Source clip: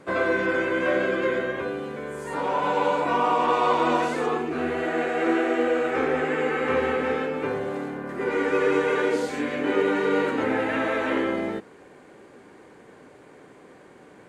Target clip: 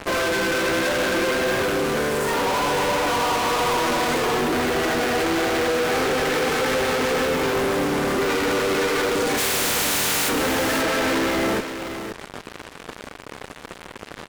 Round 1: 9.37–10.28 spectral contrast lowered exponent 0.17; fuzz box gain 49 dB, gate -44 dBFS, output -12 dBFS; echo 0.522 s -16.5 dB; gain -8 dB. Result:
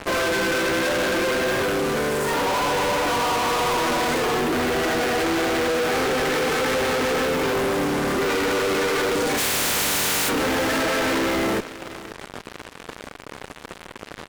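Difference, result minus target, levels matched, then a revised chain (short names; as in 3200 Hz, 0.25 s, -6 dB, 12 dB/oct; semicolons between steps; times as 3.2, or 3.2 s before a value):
echo-to-direct -7.5 dB
9.37–10.28 spectral contrast lowered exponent 0.17; fuzz box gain 49 dB, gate -44 dBFS, output -12 dBFS; echo 0.522 s -9 dB; gain -8 dB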